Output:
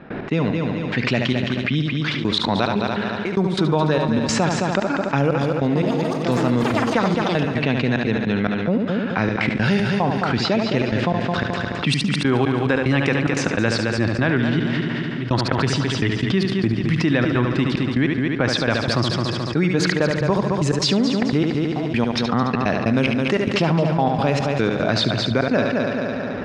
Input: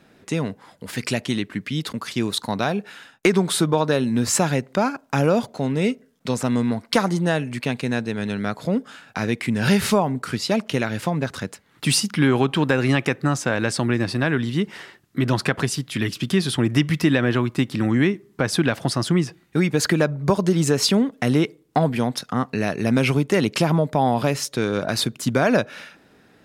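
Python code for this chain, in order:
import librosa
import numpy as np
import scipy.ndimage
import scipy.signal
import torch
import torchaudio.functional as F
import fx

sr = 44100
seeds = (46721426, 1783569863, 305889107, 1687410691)

y = scipy.signal.sosfilt(scipy.signal.butter(2, 4400.0, 'lowpass', fs=sr, output='sos'), x)
y = fx.env_lowpass(y, sr, base_hz=1900.0, full_db=-15.0)
y = fx.step_gate(y, sr, bpm=147, pattern='.x.xx..x.xxxx', floor_db=-24.0, edge_ms=4.5)
y = fx.echo_heads(y, sr, ms=72, heads='first and third', feedback_pct=48, wet_db=-10.0)
y = fx.echo_pitch(y, sr, ms=153, semitones=5, count=3, db_per_echo=-6.0, at=(5.57, 7.85))
y = fx.env_flatten(y, sr, amount_pct=70)
y = y * 10.0 ** (-2.5 / 20.0)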